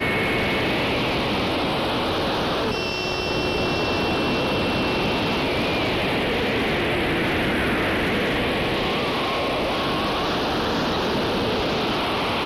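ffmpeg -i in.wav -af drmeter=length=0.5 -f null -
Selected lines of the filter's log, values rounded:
Channel 1: DR: 3.2
Overall DR: 3.2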